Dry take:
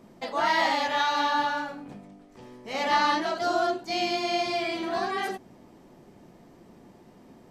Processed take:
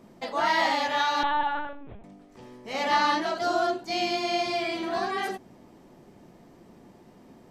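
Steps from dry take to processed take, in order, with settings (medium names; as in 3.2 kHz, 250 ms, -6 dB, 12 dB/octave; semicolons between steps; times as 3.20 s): 1.23–2.04 s: LPC vocoder at 8 kHz pitch kept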